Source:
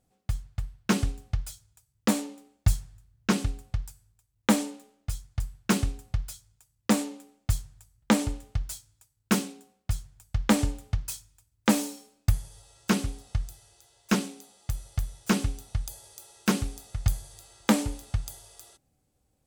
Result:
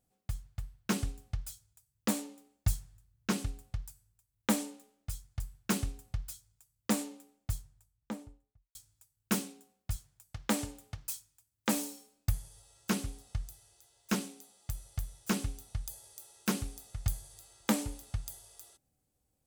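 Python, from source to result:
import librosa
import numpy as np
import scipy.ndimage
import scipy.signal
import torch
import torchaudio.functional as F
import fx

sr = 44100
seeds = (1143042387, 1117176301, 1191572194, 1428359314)

y = fx.studio_fade_out(x, sr, start_s=7.07, length_s=1.68)
y = fx.highpass(y, sr, hz=190.0, slope=6, at=(9.96, 11.73))
y = fx.high_shelf(y, sr, hz=9300.0, db=9.0)
y = F.gain(torch.from_numpy(y), -7.5).numpy()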